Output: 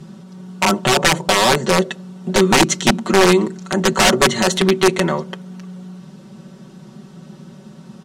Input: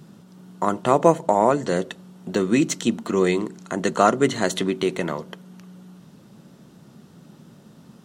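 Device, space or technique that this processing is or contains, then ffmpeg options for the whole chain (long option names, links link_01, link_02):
overflowing digital effects unit: -af "aeval=exprs='(mod(3.98*val(0)+1,2)-1)/3.98':channel_layout=same,lowpass=8900,aecho=1:1:5.3:0.89,volume=5dB"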